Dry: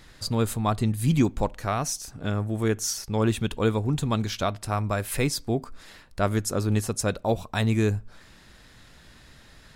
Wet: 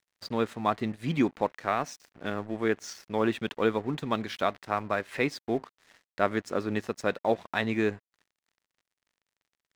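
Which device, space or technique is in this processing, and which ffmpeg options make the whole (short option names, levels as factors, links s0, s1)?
pocket radio on a weak battery: -af "highpass=250,lowpass=3400,aeval=exprs='sgn(val(0))*max(abs(val(0))-0.00398,0)':c=same,equalizer=f=1900:t=o:w=0.42:g=5"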